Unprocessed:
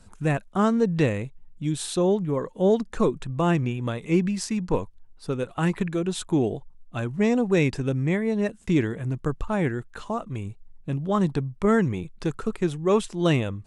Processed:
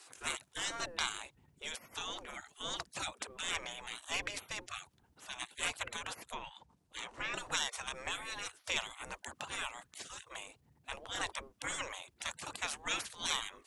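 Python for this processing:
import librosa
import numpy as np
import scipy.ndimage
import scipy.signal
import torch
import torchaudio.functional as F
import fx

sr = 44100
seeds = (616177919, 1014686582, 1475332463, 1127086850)

y = fx.env_lowpass_down(x, sr, base_hz=2100.0, full_db=-17.5, at=(6.25, 7.34))
y = fx.spec_gate(y, sr, threshold_db=-30, keep='weak')
y = y * 10.0 ** (7.0 / 20.0)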